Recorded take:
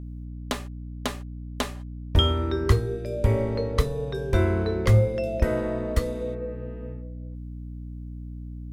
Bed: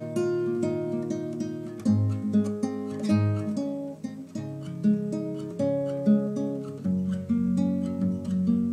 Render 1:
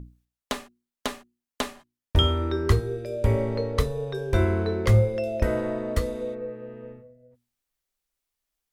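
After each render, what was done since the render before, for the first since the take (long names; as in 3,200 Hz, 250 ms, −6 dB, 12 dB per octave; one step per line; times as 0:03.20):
mains-hum notches 60/120/180/240/300/360 Hz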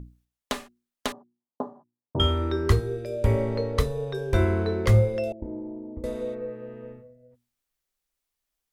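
0:01.12–0:02.20: elliptic band-pass filter 120–960 Hz
0:05.32–0:06.04: formant resonators in series u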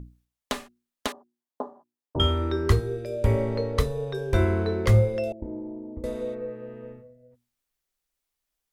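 0:01.07–0:02.16: high-pass filter 300 Hz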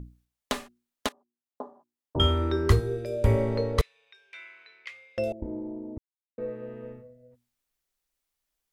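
0:01.09–0:02.24: fade in, from −17.5 dB
0:03.81–0:05.18: four-pole ladder band-pass 2,600 Hz, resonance 65%
0:05.98–0:06.38: silence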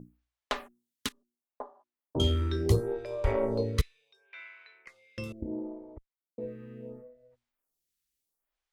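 harmonic generator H 8 −26 dB, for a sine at −6 dBFS
phaser with staggered stages 0.72 Hz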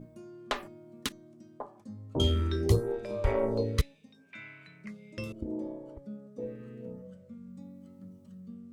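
mix in bed −22 dB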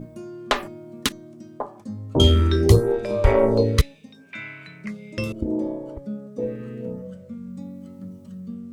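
level +11 dB
brickwall limiter −3 dBFS, peak gain reduction 2 dB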